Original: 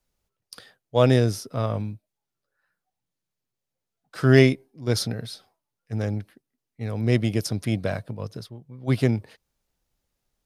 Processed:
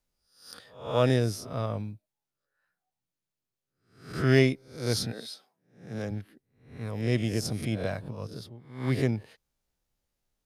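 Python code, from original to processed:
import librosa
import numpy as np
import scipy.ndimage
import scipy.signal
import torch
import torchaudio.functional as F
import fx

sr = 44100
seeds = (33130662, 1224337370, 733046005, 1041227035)

y = fx.spec_swells(x, sr, rise_s=0.49)
y = fx.highpass(y, sr, hz=fx.line((5.11, 250.0), (6.1, 110.0)), slope=24, at=(5.11, 6.1), fade=0.02)
y = F.gain(torch.from_numpy(y), -6.0).numpy()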